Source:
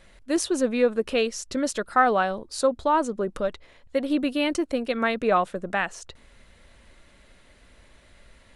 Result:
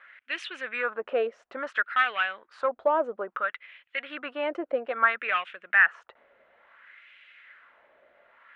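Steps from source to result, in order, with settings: overdrive pedal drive 13 dB, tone 1100 Hz, clips at -6 dBFS; LFO band-pass sine 0.59 Hz 580–2700 Hz; band shelf 2100 Hz +10 dB

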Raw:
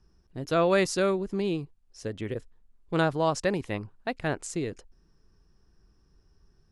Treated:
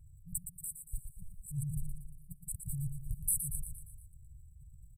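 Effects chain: transient shaper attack -10 dB, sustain +9 dB; negative-ratio compressor -35 dBFS, ratio -1; on a send: feedback echo 0.157 s, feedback 53%, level -8 dB; on the sum: speed mistake 33 rpm record played at 45 rpm; brick-wall FIR band-stop 160–7700 Hz; gain +1.5 dB

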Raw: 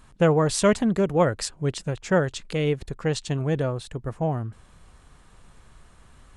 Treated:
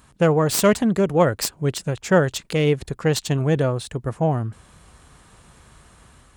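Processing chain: tracing distortion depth 0.07 ms; HPF 54 Hz; high shelf 8600 Hz +7 dB; AGC gain up to 3.5 dB; gain +1.5 dB

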